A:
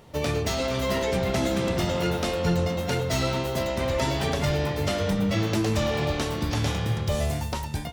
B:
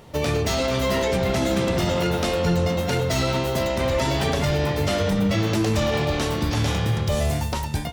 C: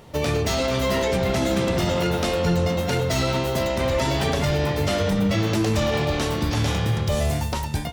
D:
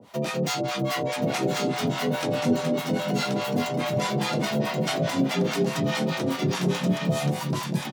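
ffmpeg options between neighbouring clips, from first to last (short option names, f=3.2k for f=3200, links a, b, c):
-af "alimiter=limit=-18dB:level=0:latency=1:release=25,volume=4.5dB"
-af anull
-filter_complex "[0:a]acrossover=split=610[a][b];[a]aeval=exprs='val(0)*(1-1/2+1/2*cos(2*PI*4.8*n/s))':c=same[c];[b]aeval=exprs='val(0)*(1-1/2-1/2*cos(2*PI*4.8*n/s))':c=same[d];[c][d]amix=inputs=2:normalize=0,afreqshift=71,aecho=1:1:1079:0.562"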